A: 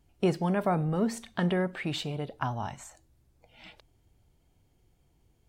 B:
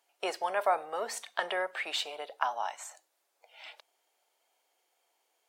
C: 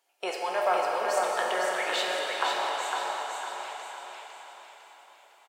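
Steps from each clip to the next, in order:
HPF 580 Hz 24 dB/oct; gain +3 dB
on a send: feedback echo 0.505 s, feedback 43%, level -4 dB; on the sum: plate-style reverb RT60 4.5 s, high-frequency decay 0.85×, pre-delay 0 ms, DRR -2 dB

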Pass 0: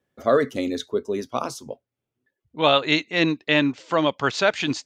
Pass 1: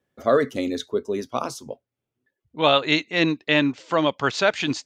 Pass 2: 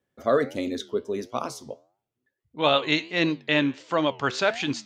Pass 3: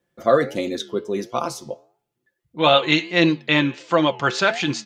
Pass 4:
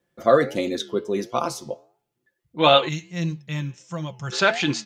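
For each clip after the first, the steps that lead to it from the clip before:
nothing audible
flange 1.5 Hz, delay 8.8 ms, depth 6 ms, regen -86%; gain +1.5 dB
comb 5.8 ms, depth 51%; de-hum 425.3 Hz, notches 7; gain +4.5 dB
spectral gain 2.89–4.33, 210–5100 Hz -17 dB

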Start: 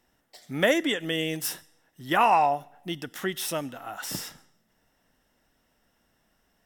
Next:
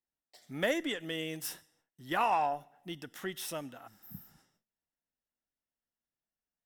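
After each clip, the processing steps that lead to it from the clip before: spectral repair 3.89–4.36, 250–12000 Hz after; gate with hold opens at -51 dBFS; added harmonics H 8 -34 dB, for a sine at -8 dBFS; gain -8.5 dB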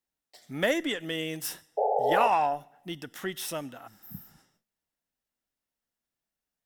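painted sound noise, 1.77–2.28, 410–880 Hz -30 dBFS; gain +4.5 dB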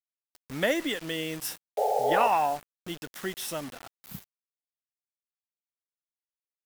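bit-crush 7-bit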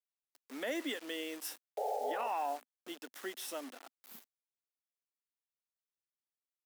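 elliptic high-pass 250 Hz, stop band 60 dB; limiter -20.5 dBFS, peak gain reduction 9.5 dB; gain -7 dB

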